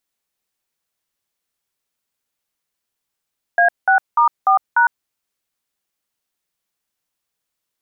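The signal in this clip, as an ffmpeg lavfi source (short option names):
-f lavfi -i "aevalsrc='0.237*clip(min(mod(t,0.296),0.106-mod(t,0.296))/0.002,0,1)*(eq(floor(t/0.296),0)*(sin(2*PI*697*mod(t,0.296))+sin(2*PI*1633*mod(t,0.296)))+eq(floor(t/0.296),1)*(sin(2*PI*770*mod(t,0.296))+sin(2*PI*1477*mod(t,0.296)))+eq(floor(t/0.296),2)*(sin(2*PI*941*mod(t,0.296))+sin(2*PI*1209*mod(t,0.296)))+eq(floor(t/0.296),3)*(sin(2*PI*770*mod(t,0.296))+sin(2*PI*1209*mod(t,0.296)))+eq(floor(t/0.296),4)*(sin(2*PI*941*mod(t,0.296))+sin(2*PI*1477*mod(t,0.296))))':d=1.48:s=44100"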